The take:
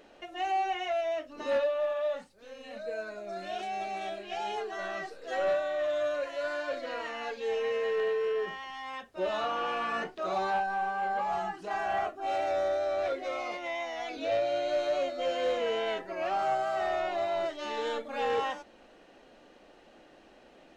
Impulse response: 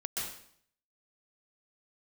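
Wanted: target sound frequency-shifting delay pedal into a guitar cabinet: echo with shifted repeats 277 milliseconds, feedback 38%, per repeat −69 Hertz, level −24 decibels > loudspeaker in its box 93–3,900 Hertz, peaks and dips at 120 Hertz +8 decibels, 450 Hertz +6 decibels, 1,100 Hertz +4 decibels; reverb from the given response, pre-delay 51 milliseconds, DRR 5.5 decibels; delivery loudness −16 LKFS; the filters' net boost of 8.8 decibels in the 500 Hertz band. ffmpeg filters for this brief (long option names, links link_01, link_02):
-filter_complex "[0:a]equalizer=frequency=500:width_type=o:gain=7,asplit=2[link_01][link_02];[1:a]atrim=start_sample=2205,adelay=51[link_03];[link_02][link_03]afir=irnorm=-1:irlink=0,volume=-9dB[link_04];[link_01][link_04]amix=inputs=2:normalize=0,asplit=3[link_05][link_06][link_07];[link_06]adelay=277,afreqshift=-69,volume=-24dB[link_08];[link_07]adelay=554,afreqshift=-138,volume=-32.4dB[link_09];[link_05][link_08][link_09]amix=inputs=3:normalize=0,highpass=93,equalizer=frequency=120:width_type=q:width=4:gain=8,equalizer=frequency=450:width_type=q:width=4:gain=6,equalizer=frequency=1100:width_type=q:width=4:gain=4,lowpass=frequency=3900:width=0.5412,lowpass=frequency=3900:width=1.3066,volume=8.5dB"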